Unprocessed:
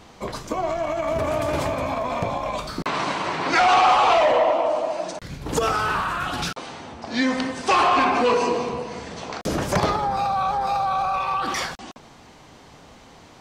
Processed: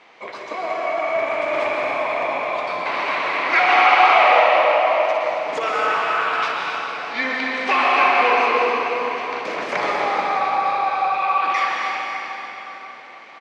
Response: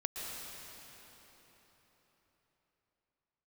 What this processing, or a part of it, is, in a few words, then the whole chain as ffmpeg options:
station announcement: -filter_complex "[0:a]highpass=470,lowpass=3600,equalizer=frequency=2200:width_type=o:width=0.48:gain=10,aecho=1:1:61.22|274.1:0.282|0.316[link_01];[1:a]atrim=start_sample=2205[link_02];[link_01][link_02]afir=irnorm=-1:irlink=0"

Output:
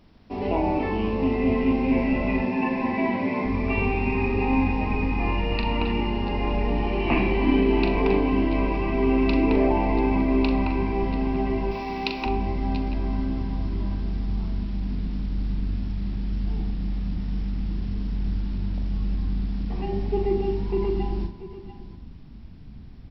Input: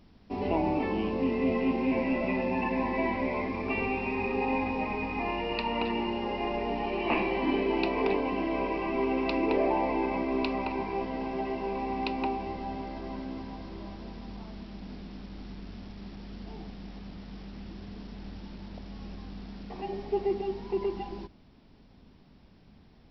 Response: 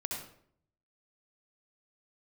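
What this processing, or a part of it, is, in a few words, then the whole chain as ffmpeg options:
filtered reverb send: -filter_complex "[0:a]asettb=1/sr,asplit=3[link_01][link_02][link_03];[link_01]atrim=end=2.424[link_04];[link_02]atrim=start=2.42:end=3.45,asetpts=PTS-STARTPTS,afade=type=in:duration=0.004:curve=qsin,afade=type=out:start_time=1.026:duration=0.004:curve=qsin,highpass=frequency=130:width=0.5412,highpass=frequency=130:width=1.3066[link_05];[link_03]atrim=start=3.446[link_06];[link_04][link_05]acrossfade=duration=0.004:curve1=hsin:curve2=qsin[link_07];[link_07][link_06]acrossfade=duration=0.004:curve1=qsin:curve2=hsin,asettb=1/sr,asplit=3[link_08][link_09][link_10];[link_08]atrim=end=11.714[link_11];[link_09]atrim=start=11.71:end=12.26,asetpts=PTS-STARTPTS,afade=type=in:duration=0.004:curve=qsin,afade=type=out:start_time=0.546:duration=0.004:curve=qsin,aemphasis=mode=production:type=riaa[link_12];[link_10]atrim=start=12.256[link_13];[link_11][link_12]acrossfade=duration=0.004:curve1=hsin:curve2=qsin[link_14];[link_14][link_13]acrossfade=duration=0.004:curve1=qsin:curve2=hsin,asplit=2[link_15][link_16];[link_16]highpass=frequency=160:width=0.5412,highpass=frequency=160:width=1.3066,lowpass=4700[link_17];[1:a]atrim=start_sample=2205[link_18];[link_17][link_18]afir=irnorm=-1:irlink=0,volume=-11dB[link_19];[link_15][link_19]amix=inputs=2:normalize=0,asubboost=boost=5.5:cutoff=210,aecho=1:1:41|681|692:0.422|0.126|0.178,volume=1.5dB"

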